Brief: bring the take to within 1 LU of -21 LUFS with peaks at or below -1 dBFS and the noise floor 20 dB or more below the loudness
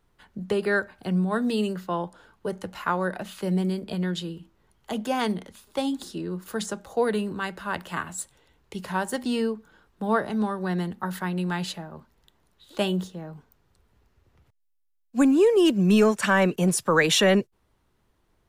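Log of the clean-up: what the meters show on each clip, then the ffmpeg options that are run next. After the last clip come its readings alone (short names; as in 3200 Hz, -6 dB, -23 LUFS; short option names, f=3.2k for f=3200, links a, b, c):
loudness -25.5 LUFS; peak -7.0 dBFS; loudness target -21.0 LUFS
-> -af "volume=4.5dB"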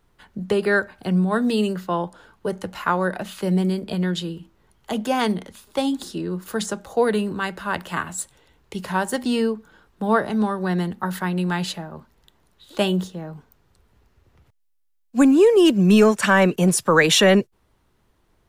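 loudness -21.0 LUFS; peak -2.5 dBFS; noise floor -65 dBFS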